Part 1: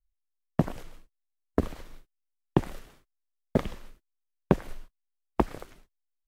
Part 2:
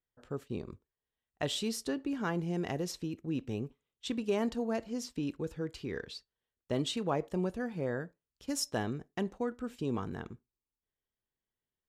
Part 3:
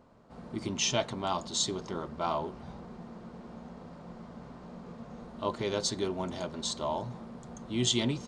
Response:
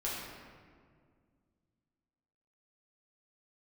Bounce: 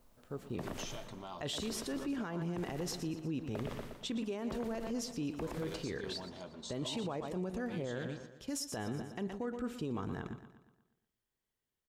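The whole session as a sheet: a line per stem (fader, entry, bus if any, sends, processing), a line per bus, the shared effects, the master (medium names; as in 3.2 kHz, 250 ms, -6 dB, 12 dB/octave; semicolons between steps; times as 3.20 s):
0.0 dB, 0.00 s, no send, echo send -9 dB, bass shelf 340 Hz -9.5 dB; three bands compressed up and down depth 70%
-6.0 dB, 0.00 s, no send, echo send -13.5 dB, level rider gain up to 8.5 dB
-11.0 dB, 0.00 s, no send, echo send -17 dB, peak limiter -24 dBFS, peak gain reduction 10 dB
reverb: none
echo: feedback delay 119 ms, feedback 49%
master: peak limiter -30 dBFS, peak gain reduction 18 dB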